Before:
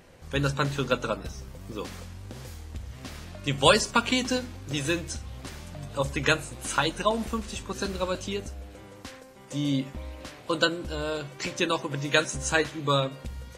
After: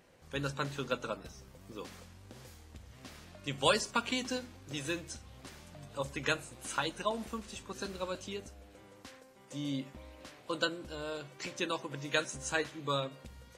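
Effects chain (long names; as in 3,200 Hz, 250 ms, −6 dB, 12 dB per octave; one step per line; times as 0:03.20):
low-shelf EQ 93 Hz −9.5 dB
level −8.5 dB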